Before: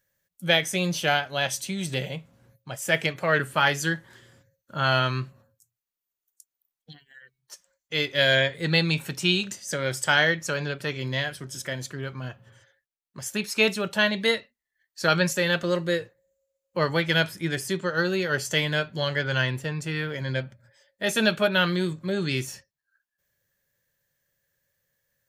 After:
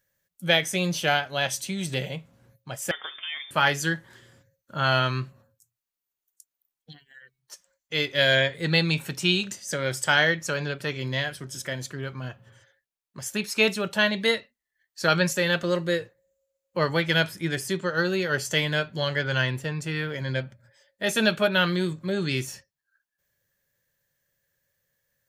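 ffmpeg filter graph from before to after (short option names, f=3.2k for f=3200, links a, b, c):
-filter_complex "[0:a]asettb=1/sr,asplit=3[a][b][c];[a]atrim=end=2.914[d];[b]atrim=start=2.91:end=3.51,asetpts=PTS-STARTPTS,afade=t=in:d=0.004:c=qsin,afade=t=out:st=0.596:d=0.004:c=qsin,acompressor=threshold=-34dB:ratio=3:attack=3.2:release=140:knee=1:detection=peak,lowpass=f=3.1k:t=q:w=0.5098,lowpass=f=3.1k:t=q:w=0.6013,lowpass=f=3.1k:t=q:w=0.9,lowpass=f=3.1k:t=q:w=2.563,afreqshift=-3700[e];[c]atrim=start=3.506[f];[d][e]acrossfade=d=0.004:c1=hsin:c2=qsin[g];[g][f]acrossfade=d=0.004:c1=qsin:c2=hsin"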